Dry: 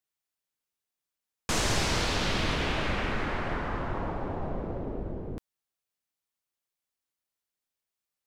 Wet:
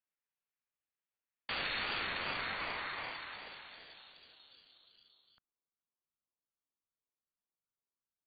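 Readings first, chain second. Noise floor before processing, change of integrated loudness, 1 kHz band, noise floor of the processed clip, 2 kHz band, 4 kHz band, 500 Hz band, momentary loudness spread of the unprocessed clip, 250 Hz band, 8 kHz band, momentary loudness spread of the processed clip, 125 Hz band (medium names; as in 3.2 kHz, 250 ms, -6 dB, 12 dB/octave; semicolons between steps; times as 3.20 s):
under -85 dBFS, -7.5 dB, -10.0 dB, under -85 dBFS, -5.5 dB, -8.0 dB, -16.5 dB, 11 LU, -21.0 dB, under -40 dB, 19 LU, -24.5 dB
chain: frequency inversion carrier 4 kHz; low-pass sweep 2.1 kHz -> 710 Hz, 1.92–5.80 s; ring modulator with a swept carrier 460 Hz, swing 40%, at 2.6 Hz; trim -6 dB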